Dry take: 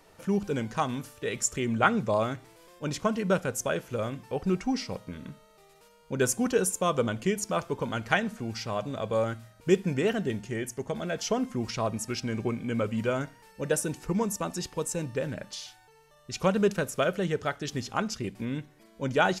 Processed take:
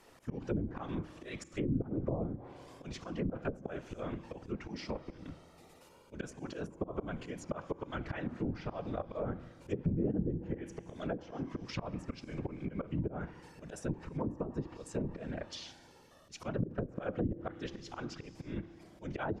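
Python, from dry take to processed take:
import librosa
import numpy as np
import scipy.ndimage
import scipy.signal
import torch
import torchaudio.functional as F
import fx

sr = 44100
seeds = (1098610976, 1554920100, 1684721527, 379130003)

y = fx.whisperise(x, sr, seeds[0])
y = fx.auto_swell(y, sr, attack_ms=218.0)
y = fx.rev_fdn(y, sr, rt60_s=2.1, lf_ratio=1.55, hf_ratio=0.95, size_ms=18.0, drr_db=17.5)
y = fx.env_lowpass_down(y, sr, base_hz=310.0, full_db=-26.5)
y = y * 10.0 ** (-2.0 / 20.0)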